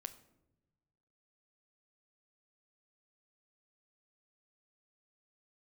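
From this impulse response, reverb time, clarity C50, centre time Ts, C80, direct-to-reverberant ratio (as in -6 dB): no single decay rate, 14.0 dB, 6 ms, 17.0 dB, 9.5 dB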